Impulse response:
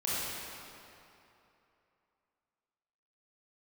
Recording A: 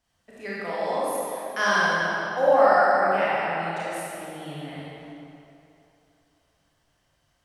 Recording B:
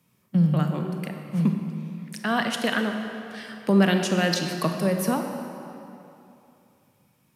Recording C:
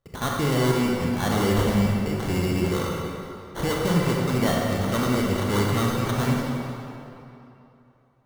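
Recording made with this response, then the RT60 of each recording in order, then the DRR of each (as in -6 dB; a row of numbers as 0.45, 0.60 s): A; 2.9, 2.9, 2.9 s; -9.0, 4.5, -2.5 dB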